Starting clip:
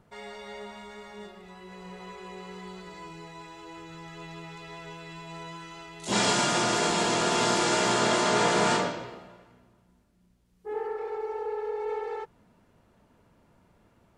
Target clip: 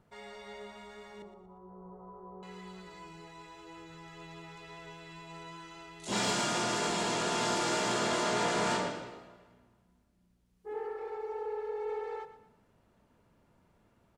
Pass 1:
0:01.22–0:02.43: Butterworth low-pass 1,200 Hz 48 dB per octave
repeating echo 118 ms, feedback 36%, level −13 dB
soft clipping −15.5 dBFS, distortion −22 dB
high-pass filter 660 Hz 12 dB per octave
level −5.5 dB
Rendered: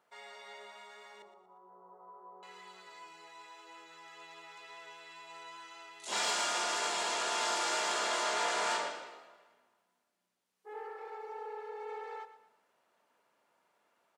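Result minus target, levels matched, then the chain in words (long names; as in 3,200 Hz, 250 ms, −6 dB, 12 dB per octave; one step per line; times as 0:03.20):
500 Hz band −4.5 dB
0:01.22–0:02.43: Butterworth low-pass 1,200 Hz 48 dB per octave
repeating echo 118 ms, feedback 36%, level −13 dB
soft clipping −15.5 dBFS, distortion −22 dB
level −5.5 dB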